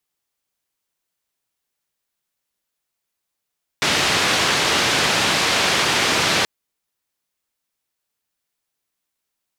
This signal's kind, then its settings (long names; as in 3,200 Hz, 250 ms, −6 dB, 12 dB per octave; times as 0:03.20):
band-limited noise 100–4,100 Hz, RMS −18.5 dBFS 2.63 s